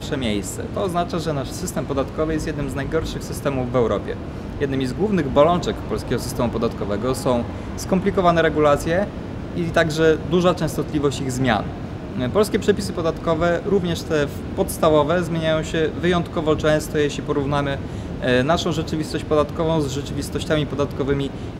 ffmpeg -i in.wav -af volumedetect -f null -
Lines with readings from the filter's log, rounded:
mean_volume: -20.9 dB
max_volume: -2.4 dB